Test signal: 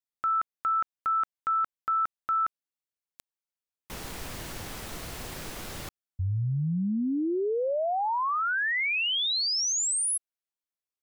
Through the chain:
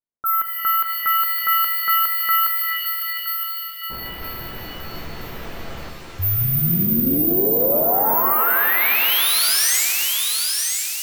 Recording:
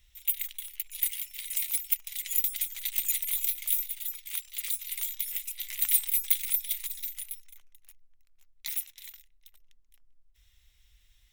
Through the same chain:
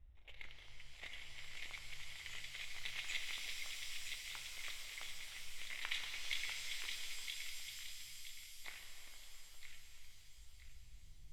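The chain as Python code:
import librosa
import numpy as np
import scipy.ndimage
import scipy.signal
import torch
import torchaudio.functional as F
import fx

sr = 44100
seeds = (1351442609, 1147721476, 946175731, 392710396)

p1 = (np.kron(scipy.signal.resample_poly(x, 1, 3), np.eye(3)[0]) * 3)[:len(x)]
p2 = fx.env_lowpass(p1, sr, base_hz=700.0, full_db=-21.5)
p3 = p2 + fx.echo_wet_highpass(p2, sr, ms=969, feedback_pct=33, hz=2000.0, wet_db=-4, dry=0)
p4 = fx.rev_shimmer(p3, sr, seeds[0], rt60_s=3.7, semitones=7, shimmer_db=-2, drr_db=4.0)
y = p4 * 10.0 ** (3.5 / 20.0)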